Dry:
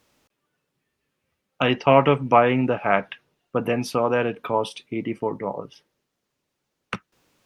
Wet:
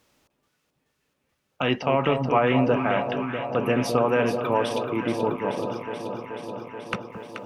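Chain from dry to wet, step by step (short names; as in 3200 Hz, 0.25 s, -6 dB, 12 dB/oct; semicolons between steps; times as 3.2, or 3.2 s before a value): limiter -11 dBFS, peak gain reduction 9.5 dB; on a send: echo with dull and thin repeats by turns 0.215 s, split 1000 Hz, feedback 87%, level -7 dB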